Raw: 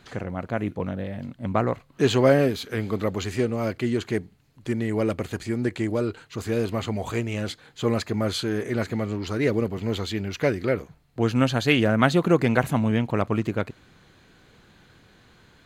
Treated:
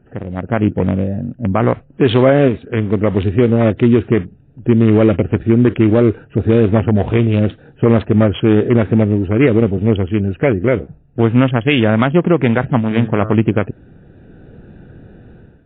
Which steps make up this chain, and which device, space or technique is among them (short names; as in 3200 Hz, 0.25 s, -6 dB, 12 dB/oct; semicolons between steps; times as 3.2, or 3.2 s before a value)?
Wiener smoothing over 41 samples; 12.78–13.34 de-hum 108.1 Hz, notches 17; low-bitrate web radio (AGC gain up to 13 dB; limiter -7.5 dBFS, peak gain reduction 6.5 dB; gain +6 dB; MP3 24 kbps 8000 Hz)